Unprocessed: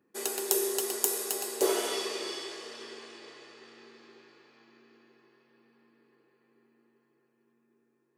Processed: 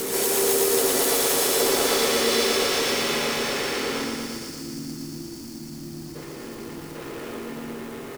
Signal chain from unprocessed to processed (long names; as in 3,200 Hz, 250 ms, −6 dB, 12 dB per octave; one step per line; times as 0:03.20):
pitch-shifted copies added −7 semitones −10 dB, −4 semitones −16 dB, +3 semitones −1 dB
downward compressor, threshold −34 dBFS, peak gain reduction 15.5 dB
power curve on the samples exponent 0.35
gain on a spectral selection 0:04.05–0:06.95, 350–4,200 Hz −24 dB
backwards echo 795 ms −3.5 dB
feedback echo at a low word length 117 ms, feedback 80%, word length 7 bits, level −4 dB
level −3.5 dB